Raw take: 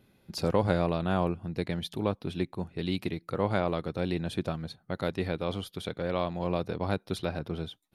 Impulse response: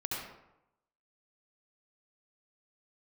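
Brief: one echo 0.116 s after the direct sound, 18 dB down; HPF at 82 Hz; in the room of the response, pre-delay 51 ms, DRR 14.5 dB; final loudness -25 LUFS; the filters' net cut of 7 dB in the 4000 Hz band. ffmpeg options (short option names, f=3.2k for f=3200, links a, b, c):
-filter_complex "[0:a]highpass=82,equalizer=f=4k:t=o:g=-8.5,aecho=1:1:116:0.126,asplit=2[a][b];[1:a]atrim=start_sample=2205,adelay=51[c];[b][c]afir=irnorm=-1:irlink=0,volume=-18dB[d];[a][d]amix=inputs=2:normalize=0,volume=7dB"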